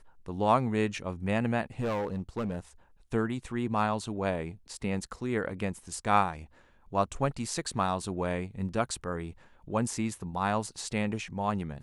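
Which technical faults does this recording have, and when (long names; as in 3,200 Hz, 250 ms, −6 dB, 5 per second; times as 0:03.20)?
0:01.79–0:02.59: clipping −27 dBFS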